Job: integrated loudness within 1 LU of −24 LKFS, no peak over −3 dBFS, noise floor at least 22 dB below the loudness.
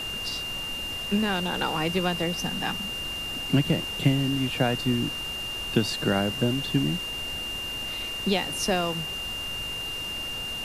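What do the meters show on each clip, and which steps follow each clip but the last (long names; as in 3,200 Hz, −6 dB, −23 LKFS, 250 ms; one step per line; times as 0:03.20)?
interfering tone 2,800 Hz; level of the tone −31 dBFS; background noise floor −33 dBFS; target noise floor −49 dBFS; integrated loudness −27.0 LKFS; sample peak −8.0 dBFS; target loudness −24.0 LKFS
→ notch filter 2,800 Hz, Q 30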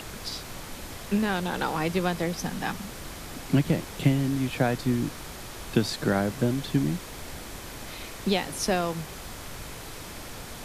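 interfering tone none found; background noise floor −41 dBFS; target noise floor −51 dBFS
→ noise reduction from a noise print 10 dB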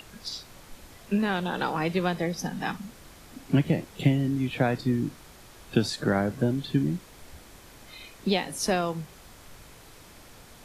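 background noise floor −51 dBFS; integrated loudness −28.0 LKFS; sample peak −8.0 dBFS; target loudness −24.0 LKFS
→ level +4 dB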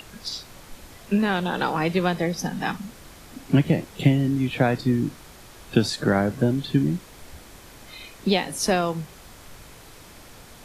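integrated loudness −24.0 LKFS; sample peak −4.0 dBFS; background noise floor −47 dBFS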